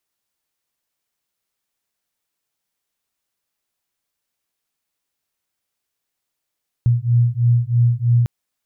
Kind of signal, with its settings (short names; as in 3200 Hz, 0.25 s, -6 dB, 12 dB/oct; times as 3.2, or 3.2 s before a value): beating tones 118 Hz, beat 3.1 Hz, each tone -16 dBFS 1.40 s